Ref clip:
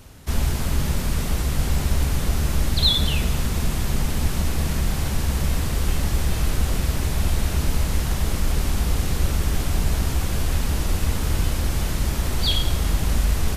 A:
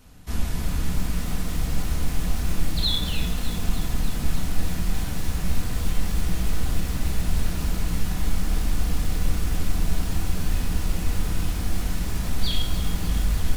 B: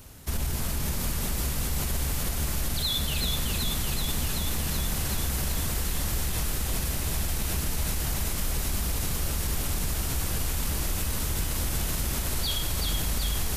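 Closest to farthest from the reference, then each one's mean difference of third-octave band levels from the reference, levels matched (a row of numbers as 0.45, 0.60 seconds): A, B; 2.0, 3.0 decibels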